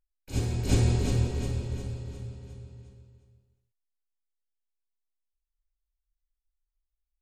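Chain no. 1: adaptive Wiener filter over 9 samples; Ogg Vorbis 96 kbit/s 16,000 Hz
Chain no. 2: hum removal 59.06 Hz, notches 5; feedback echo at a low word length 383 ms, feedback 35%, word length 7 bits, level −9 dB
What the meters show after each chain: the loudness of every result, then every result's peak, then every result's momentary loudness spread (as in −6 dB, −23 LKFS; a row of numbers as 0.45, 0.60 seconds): −29.5, −29.5 LKFS; −10.5, −11.0 dBFS; 20, 18 LU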